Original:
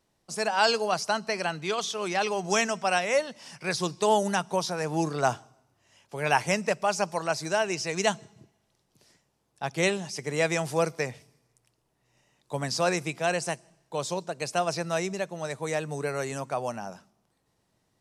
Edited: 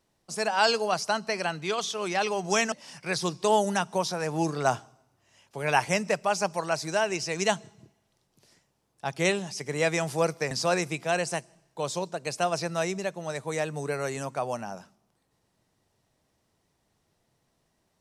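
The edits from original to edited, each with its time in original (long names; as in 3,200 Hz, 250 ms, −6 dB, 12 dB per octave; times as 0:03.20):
0:02.72–0:03.30: remove
0:11.09–0:12.66: remove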